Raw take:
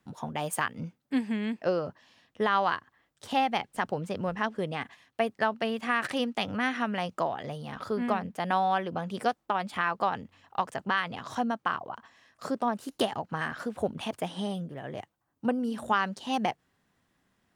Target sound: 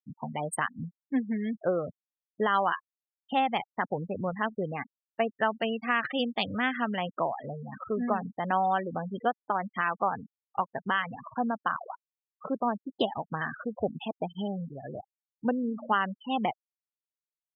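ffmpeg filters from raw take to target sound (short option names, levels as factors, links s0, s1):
-filter_complex "[0:a]asplit=3[s0][s1][s2];[s0]afade=t=out:st=5.43:d=0.02[s3];[s1]highshelf=f=4000:g=7,afade=t=in:st=5.43:d=0.02,afade=t=out:st=7.91:d=0.02[s4];[s2]afade=t=in:st=7.91:d=0.02[s5];[s3][s4][s5]amix=inputs=3:normalize=0,afftfilt=real='re*gte(hypot(re,im),0.0355)':imag='im*gte(hypot(re,im),0.0355)':win_size=1024:overlap=0.75"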